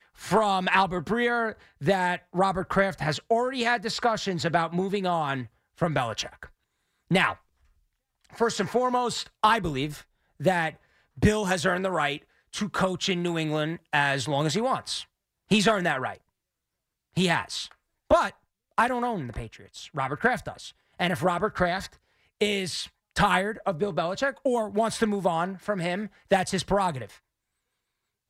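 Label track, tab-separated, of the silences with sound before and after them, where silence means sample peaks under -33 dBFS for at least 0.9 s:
7.330000	8.390000	silence
16.130000	17.170000	silence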